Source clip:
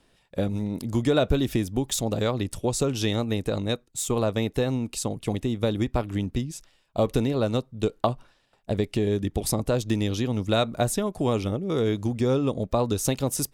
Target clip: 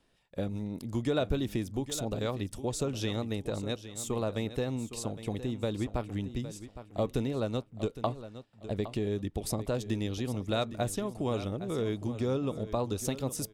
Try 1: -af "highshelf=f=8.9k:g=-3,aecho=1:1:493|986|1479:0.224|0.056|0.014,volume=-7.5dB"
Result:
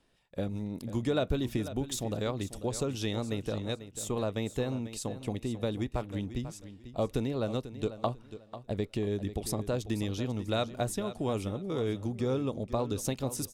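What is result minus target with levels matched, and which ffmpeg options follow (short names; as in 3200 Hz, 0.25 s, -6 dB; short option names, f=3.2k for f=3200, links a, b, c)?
echo 0.319 s early
-af "highshelf=f=8.9k:g=-3,aecho=1:1:812|1624|2436:0.224|0.056|0.014,volume=-7.5dB"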